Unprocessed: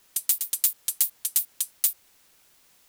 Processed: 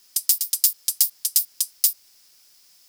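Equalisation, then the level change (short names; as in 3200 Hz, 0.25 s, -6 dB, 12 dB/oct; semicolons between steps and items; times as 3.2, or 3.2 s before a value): high shelf 2500 Hz +10 dB; bell 5100 Hz +12 dB 0.35 oct; -6.0 dB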